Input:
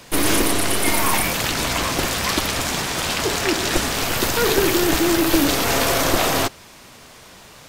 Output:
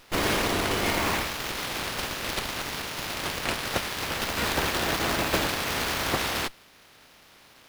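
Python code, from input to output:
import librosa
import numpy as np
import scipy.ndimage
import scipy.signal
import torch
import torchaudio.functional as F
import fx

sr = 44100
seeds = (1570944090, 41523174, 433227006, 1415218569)

y = fx.spec_clip(x, sr, under_db=18)
y = fx.running_max(y, sr, window=5)
y = y * librosa.db_to_amplitude(-8.0)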